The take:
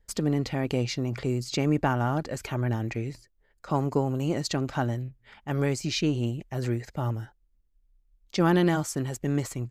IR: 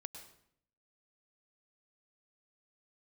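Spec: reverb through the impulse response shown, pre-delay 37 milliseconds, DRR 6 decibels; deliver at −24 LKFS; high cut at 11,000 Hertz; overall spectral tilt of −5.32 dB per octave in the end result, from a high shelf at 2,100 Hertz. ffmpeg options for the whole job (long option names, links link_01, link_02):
-filter_complex "[0:a]lowpass=11000,highshelf=frequency=2100:gain=4,asplit=2[link_01][link_02];[1:a]atrim=start_sample=2205,adelay=37[link_03];[link_02][link_03]afir=irnorm=-1:irlink=0,volume=-2dB[link_04];[link_01][link_04]amix=inputs=2:normalize=0,volume=3dB"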